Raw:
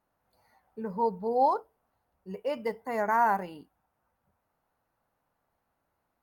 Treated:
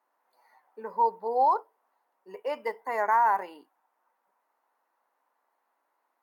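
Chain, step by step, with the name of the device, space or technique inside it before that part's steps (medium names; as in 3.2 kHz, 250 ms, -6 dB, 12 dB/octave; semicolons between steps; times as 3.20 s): laptop speaker (high-pass 310 Hz 24 dB/octave; peaking EQ 980 Hz +9 dB 0.55 oct; peaking EQ 1.9 kHz +5.5 dB 0.54 oct; peak limiter -13.5 dBFS, peak gain reduction 6.5 dB); trim -1.5 dB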